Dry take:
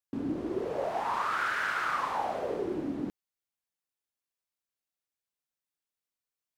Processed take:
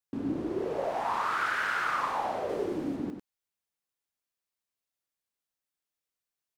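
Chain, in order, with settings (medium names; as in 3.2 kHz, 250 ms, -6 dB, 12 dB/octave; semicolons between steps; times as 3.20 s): 2.49–2.96 s: treble shelf 4.1 kHz +6.5 dB; on a send: delay 96 ms -7 dB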